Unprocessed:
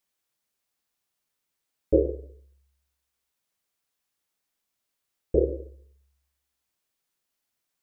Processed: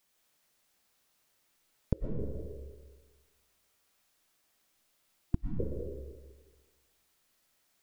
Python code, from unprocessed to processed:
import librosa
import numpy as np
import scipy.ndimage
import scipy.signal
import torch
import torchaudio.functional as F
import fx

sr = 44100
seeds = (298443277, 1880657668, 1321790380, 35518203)

y = fx.gate_flip(x, sr, shuts_db=-19.0, range_db=-41)
y = fx.spec_erase(y, sr, start_s=5.3, length_s=0.29, low_hz=340.0, high_hz=690.0)
y = fx.rev_freeverb(y, sr, rt60_s=1.4, hf_ratio=0.65, predelay_ms=80, drr_db=0.0)
y = y * librosa.db_to_amplitude(6.5)